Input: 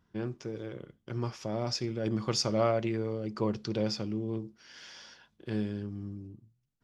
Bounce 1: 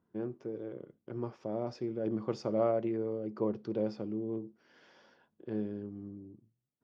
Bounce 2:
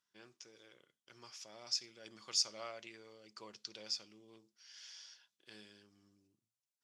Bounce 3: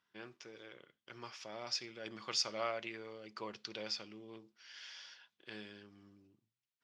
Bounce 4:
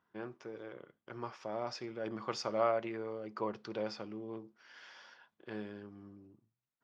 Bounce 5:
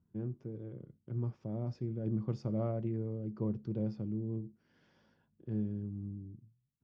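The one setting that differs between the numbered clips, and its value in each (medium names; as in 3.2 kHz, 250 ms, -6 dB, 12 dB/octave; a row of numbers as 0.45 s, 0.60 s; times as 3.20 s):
band-pass filter, frequency: 410 Hz, 7.4 kHz, 2.9 kHz, 1.1 kHz, 130 Hz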